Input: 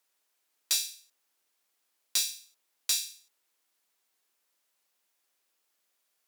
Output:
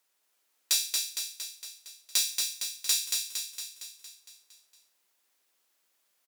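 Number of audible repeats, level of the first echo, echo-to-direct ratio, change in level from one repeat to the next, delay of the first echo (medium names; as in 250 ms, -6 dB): 7, -4.0 dB, -2.0 dB, -4.5 dB, 230 ms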